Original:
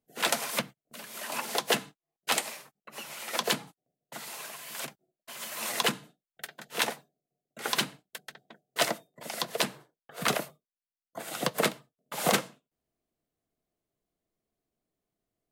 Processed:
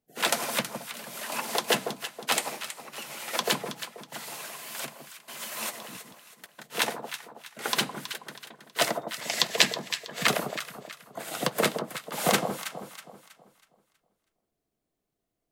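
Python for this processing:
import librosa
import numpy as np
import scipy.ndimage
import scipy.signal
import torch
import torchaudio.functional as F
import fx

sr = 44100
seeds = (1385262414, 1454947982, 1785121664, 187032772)

y = fx.level_steps(x, sr, step_db=23, at=(5.69, 6.63), fade=0.02)
y = fx.spec_box(y, sr, start_s=9.01, length_s=1.26, low_hz=1600.0, high_hz=8100.0, gain_db=8)
y = fx.echo_alternate(y, sr, ms=161, hz=1100.0, feedback_pct=60, wet_db=-6)
y = F.gain(torch.from_numpy(y), 1.5).numpy()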